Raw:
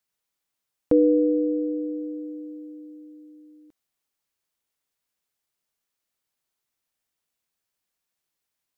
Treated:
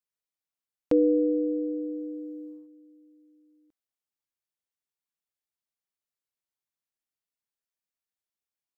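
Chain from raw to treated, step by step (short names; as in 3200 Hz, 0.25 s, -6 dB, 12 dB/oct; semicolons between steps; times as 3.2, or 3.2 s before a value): gate -38 dBFS, range -9 dB; gain -3.5 dB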